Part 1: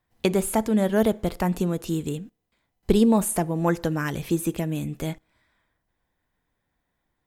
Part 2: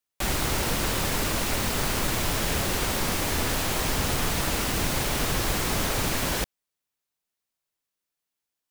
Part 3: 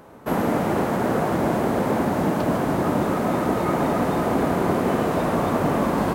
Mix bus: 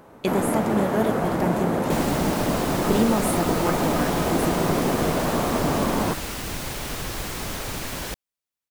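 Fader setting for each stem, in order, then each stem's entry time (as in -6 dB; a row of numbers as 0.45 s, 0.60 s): -3.5 dB, -4.5 dB, -2.0 dB; 0.00 s, 1.70 s, 0.00 s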